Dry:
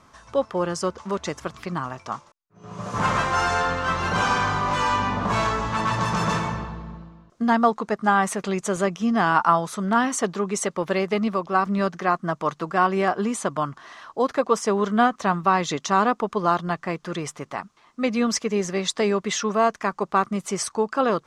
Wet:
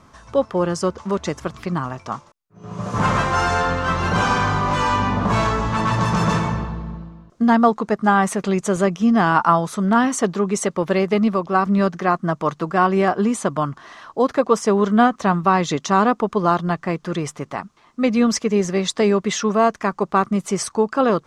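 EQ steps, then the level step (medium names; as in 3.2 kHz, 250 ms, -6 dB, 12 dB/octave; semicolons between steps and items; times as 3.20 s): bass shelf 460 Hz +6 dB; +1.5 dB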